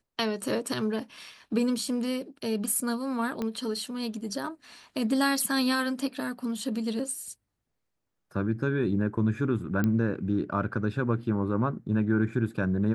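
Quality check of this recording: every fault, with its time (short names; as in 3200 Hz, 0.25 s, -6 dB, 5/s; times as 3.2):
3.42 pop -19 dBFS
9.84 pop -15 dBFS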